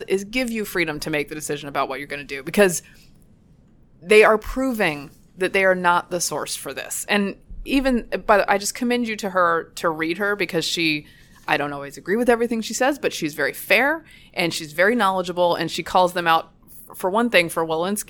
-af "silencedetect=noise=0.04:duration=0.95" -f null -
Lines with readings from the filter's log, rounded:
silence_start: 2.79
silence_end: 4.09 | silence_duration: 1.30